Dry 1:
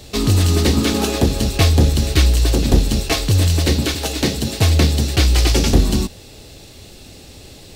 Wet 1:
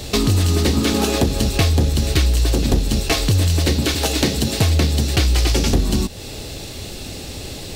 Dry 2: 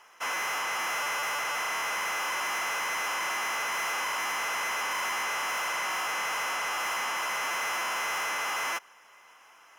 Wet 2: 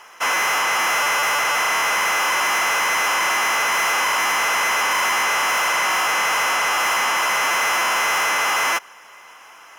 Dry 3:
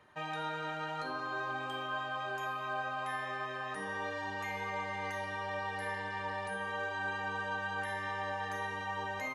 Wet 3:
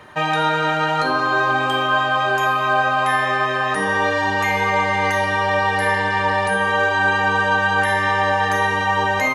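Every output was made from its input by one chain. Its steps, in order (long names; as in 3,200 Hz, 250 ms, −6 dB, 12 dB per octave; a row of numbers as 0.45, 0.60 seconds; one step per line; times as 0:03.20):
downward compressor 3 to 1, threshold −26 dBFS
loudness normalisation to −18 LKFS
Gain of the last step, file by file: +8.5, +11.5, +19.5 decibels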